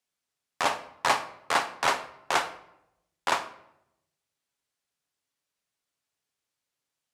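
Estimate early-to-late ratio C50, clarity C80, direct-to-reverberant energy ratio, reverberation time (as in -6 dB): 13.0 dB, 16.5 dB, 9.0 dB, 0.80 s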